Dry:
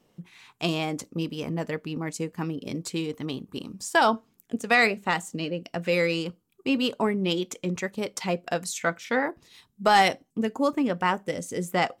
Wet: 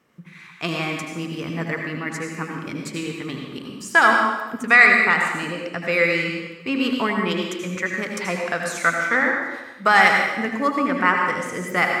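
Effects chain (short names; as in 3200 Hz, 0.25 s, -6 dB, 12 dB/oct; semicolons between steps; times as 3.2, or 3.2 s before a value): HPF 57 Hz; band shelf 1600 Hz +10.5 dB 1.3 oct; reverb RT60 1.1 s, pre-delay 74 ms, DRR 1.5 dB; gain -1 dB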